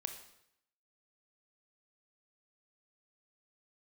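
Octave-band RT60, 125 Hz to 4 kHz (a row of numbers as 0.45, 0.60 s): 0.80, 0.80, 0.75, 0.75, 0.75, 0.70 s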